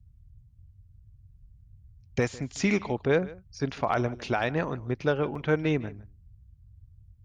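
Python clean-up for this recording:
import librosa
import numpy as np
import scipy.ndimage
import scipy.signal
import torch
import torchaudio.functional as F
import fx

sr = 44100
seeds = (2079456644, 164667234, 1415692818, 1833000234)

y = fx.fix_declip(x, sr, threshold_db=-13.5)
y = fx.fix_interpolate(y, sr, at_s=(5.35,), length_ms=4.3)
y = fx.noise_reduce(y, sr, print_start_s=0.09, print_end_s=0.59, reduce_db=18.0)
y = fx.fix_echo_inverse(y, sr, delay_ms=153, level_db=-20.0)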